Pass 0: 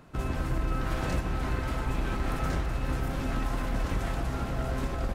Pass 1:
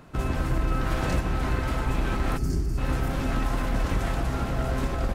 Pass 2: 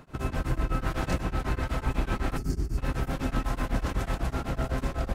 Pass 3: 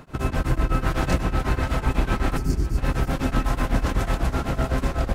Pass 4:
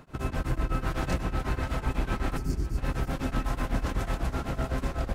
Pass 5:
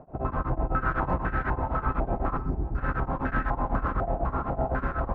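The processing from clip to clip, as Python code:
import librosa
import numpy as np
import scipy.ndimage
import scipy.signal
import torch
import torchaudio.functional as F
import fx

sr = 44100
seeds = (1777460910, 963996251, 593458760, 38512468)

y1 = fx.spec_box(x, sr, start_s=2.38, length_s=0.4, low_hz=450.0, high_hz=4300.0, gain_db=-16)
y1 = y1 * 10.0 ** (4.0 / 20.0)
y2 = y1 * np.abs(np.cos(np.pi * 8.0 * np.arange(len(y1)) / sr))
y3 = y2 + 10.0 ** (-16.5 / 20.0) * np.pad(y2, (int(547 * sr / 1000.0), 0))[:len(y2)]
y3 = y3 * 10.0 ** (6.0 / 20.0)
y4 = np.clip(y3, -10.0 ** (-12.0 / 20.0), 10.0 ** (-12.0 / 20.0))
y4 = y4 * 10.0 ** (-6.5 / 20.0)
y5 = fx.filter_held_lowpass(y4, sr, hz=4.0, low_hz=710.0, high_hz=1600.0)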